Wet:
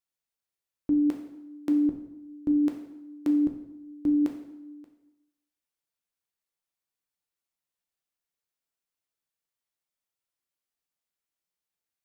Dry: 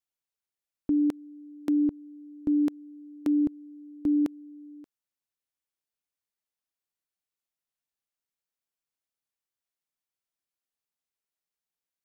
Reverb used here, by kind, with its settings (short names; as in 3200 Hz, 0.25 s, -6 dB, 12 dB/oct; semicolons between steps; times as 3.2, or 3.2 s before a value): plate-style reverb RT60 0.86 s, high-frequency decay 0.85×, DRR 2.5 dB; gain -1 dB